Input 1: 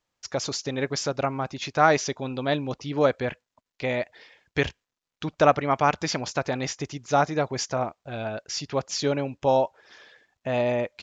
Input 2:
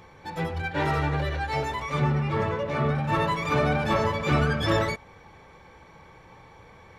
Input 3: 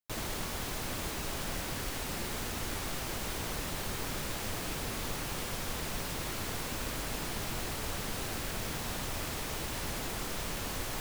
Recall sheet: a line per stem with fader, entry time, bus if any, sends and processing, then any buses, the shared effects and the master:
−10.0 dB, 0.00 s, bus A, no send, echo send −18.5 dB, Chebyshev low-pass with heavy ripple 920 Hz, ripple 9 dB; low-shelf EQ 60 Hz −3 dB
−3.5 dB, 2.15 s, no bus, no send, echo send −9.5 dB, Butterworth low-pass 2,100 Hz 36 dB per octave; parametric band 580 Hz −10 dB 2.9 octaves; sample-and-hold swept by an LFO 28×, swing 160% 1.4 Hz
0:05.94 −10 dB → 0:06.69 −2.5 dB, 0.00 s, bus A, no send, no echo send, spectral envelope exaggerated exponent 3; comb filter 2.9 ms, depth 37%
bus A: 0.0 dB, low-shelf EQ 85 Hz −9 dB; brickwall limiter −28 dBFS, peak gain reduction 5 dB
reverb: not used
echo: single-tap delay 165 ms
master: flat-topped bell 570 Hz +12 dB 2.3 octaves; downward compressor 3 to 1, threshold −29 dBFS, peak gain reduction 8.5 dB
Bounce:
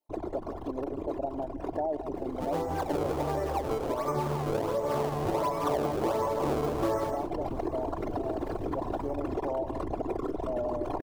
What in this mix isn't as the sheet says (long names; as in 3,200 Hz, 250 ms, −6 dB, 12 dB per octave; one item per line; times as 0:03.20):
stem 2: missing parametric band 580 Hz −10 dB 2.9 octaves
stem 3 −10.0 dB → −1.0 dB